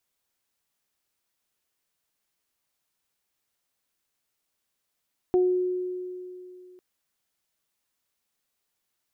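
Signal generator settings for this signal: additive tone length 1.45 s, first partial 364 Hz, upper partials -12.5 dB, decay 2.76 s, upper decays 0.35 s, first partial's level -17 dB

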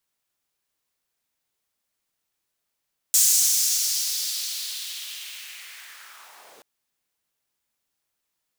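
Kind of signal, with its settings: swept filtered noise pink, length 3.48 s highpass, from 6900 Hz, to 380 Hz, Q 2.1, linear, gain ramp -37 dB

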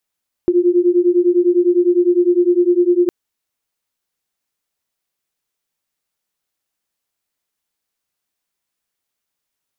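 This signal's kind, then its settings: beating tones 348 Hz, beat 9.9 Hz, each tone -13.5 dBFS 2.61 s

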